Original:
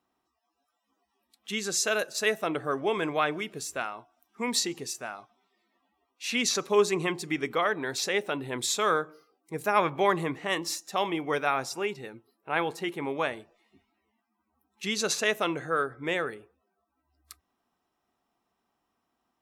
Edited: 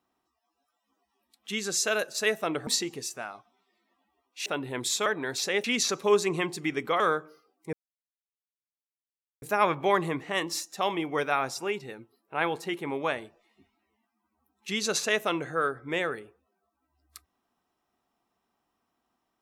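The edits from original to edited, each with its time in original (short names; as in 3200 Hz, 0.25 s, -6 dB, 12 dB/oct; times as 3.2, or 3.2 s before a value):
2.67–4.51 cut
6.3–7.66 swap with 8.24–8.84
9.57 insert silence 1.69 s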